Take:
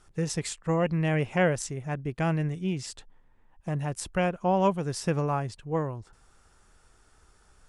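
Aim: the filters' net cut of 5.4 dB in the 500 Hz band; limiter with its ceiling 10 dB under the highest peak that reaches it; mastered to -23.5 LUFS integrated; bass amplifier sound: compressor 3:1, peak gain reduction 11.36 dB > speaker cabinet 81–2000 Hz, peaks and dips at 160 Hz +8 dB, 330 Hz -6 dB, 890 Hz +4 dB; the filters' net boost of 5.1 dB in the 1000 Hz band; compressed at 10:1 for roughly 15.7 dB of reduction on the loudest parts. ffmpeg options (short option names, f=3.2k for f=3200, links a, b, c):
-af "equalizer=f=500:t=o:g=-8,equalizer=f=1k:t=o:g=6.5,acompressor=threshold=-34dB:ratio=10,alimiter=level_in=6.5dB:limit=-24dB:level=0:latency=1,volume=-6.5dB,acompressor=threshold=-50dB:ratio=3,highpass=f=81:w=0.5412,highpass=f=81:w=1.3066,equalizer=f=160:t=q:w=4:g=8,equalizer=f=330:t=q:w=4:g=-6,equalizer=f=890:t=q:w=4:g=4,lowpass=f=2k:w=0.5412,lowpass=f=2k:w=1.3066,volume=23.5dB"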